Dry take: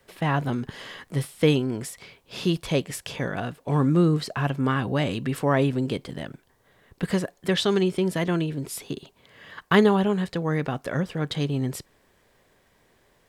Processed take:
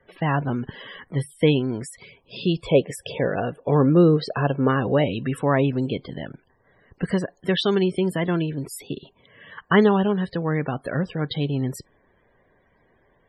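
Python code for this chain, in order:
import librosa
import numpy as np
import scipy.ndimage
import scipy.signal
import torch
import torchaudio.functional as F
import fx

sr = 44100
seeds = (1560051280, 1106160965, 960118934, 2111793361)

y = fx.peak_eq(x, sr, hz=490.0, db=9.0, octaves=0.86, at=(2.66, 5.05))
y = fx.spec_topn(y, sr, count=64)
y = F.gain(torch.from_numpy(y), 1.5).numpy()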